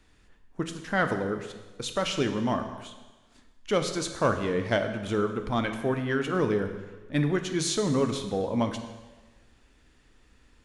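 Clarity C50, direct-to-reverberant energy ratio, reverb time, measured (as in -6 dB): 9.0 dB, 6.5 dB, 1.3 s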